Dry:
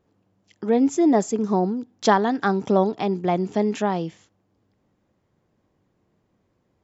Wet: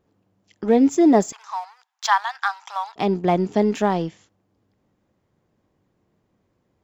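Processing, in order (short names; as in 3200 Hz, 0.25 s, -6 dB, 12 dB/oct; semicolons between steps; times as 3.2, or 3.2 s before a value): in parallel at -6.5 dB: crossover distortion -34 dBFS; 1.32–2.96 on the sum: steep high-pass 850 Hz 48 dB/oct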